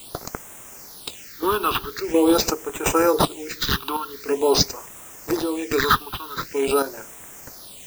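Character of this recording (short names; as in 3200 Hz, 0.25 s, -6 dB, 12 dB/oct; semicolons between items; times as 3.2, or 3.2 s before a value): aliases and images of a low sample rate 11000 Hz, jitter 0%; chopped level 1.4 Hz, depth 65%, duty 55%; a quantiser's noise floor 8-bit, dither triangular; phasing stages 6, 0.45 Hz, lowest notch 530–4400 Hz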